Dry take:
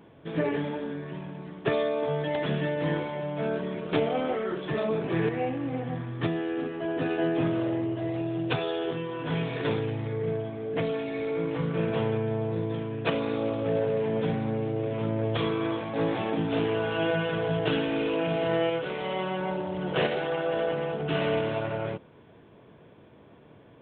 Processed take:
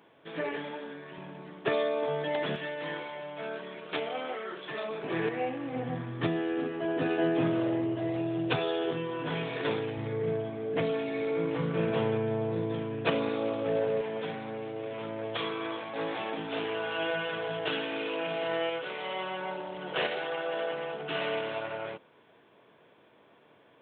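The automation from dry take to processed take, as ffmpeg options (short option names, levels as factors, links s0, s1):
-af "asetnsamples=n=441:p=0,asendcmd='1.18 highpass f 380;2.56 highpass f 1200;5.03 highpass f 440;5.76 highpass f 140;9.29 highpass f 340;9.97 highpass f 150;13.29 highpass f 330;14.01 highpass f 840',highpass=f=840:p=1"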